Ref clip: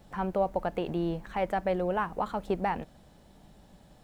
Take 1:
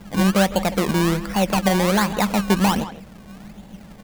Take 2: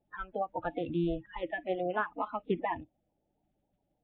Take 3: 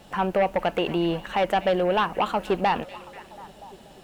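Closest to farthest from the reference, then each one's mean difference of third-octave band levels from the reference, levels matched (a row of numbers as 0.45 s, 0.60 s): 3, 1, 2; 4.5 dB, 8.0 dB, 11.0 dB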